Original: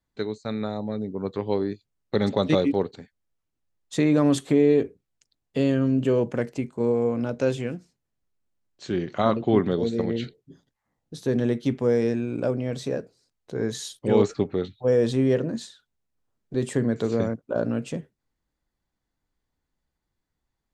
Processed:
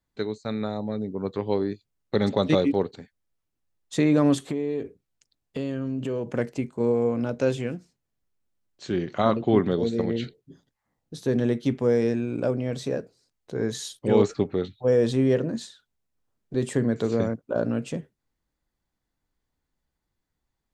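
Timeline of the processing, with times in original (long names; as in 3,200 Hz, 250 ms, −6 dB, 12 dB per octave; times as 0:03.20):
0:04.34–0:06.31: downward compressor 3 to 1, threshold −27 dBFS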